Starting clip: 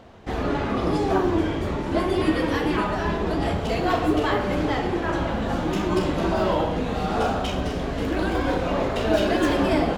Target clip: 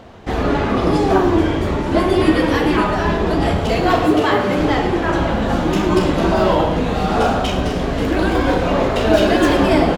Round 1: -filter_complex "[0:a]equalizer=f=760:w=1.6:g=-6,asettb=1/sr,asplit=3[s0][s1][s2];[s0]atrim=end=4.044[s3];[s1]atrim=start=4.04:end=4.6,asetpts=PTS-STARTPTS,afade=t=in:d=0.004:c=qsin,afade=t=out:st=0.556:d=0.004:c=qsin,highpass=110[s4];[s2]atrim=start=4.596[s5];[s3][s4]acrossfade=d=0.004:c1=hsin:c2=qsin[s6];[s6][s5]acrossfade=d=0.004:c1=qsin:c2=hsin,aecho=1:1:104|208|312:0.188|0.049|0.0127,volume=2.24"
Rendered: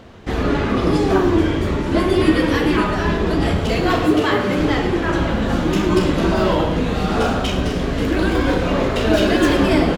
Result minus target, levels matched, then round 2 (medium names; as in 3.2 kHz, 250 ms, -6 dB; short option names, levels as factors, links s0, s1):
1 kHz band -3.0 dB
-filter_complex "[0:a]asettb=1/sr,asplit=3[s0][s1][s2];[s0]atrim=end=4.044[s3];[s1]atrim=start=4.04:end=4.6,asetpts=PTS-STARTPTS,afade=t=in:d=0.004:c=qsin,afade=t=out:st=0.556:d=0.004:c=qsin,highpass=110[s4];[s2]atrim=start=4.596[s5];[s3][s4]acrossfade=d=0.004:c1=hsin:c2=qsin[s6];[s6][s5]acrossfade=d=0.004:c1=qsin:c2=hsin,aecho=1:1:104|208|312:0.188|0.049|0.0127,volume=2.24"